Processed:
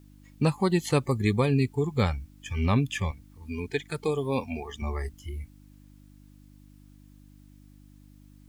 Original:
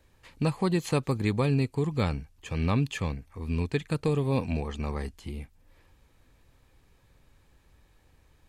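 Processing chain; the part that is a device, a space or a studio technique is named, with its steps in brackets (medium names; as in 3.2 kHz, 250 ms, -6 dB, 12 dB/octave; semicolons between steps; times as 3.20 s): spectral noise reduction 19 dB; 3.11–4.82 s: high-pass 290 Hz 6 dB/octave; video cassette with head-switching buzz (mains buzz 50 Hz, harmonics 6, -56 dBFS -3 dB/octave; white noise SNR 40 dB); trim +3 dB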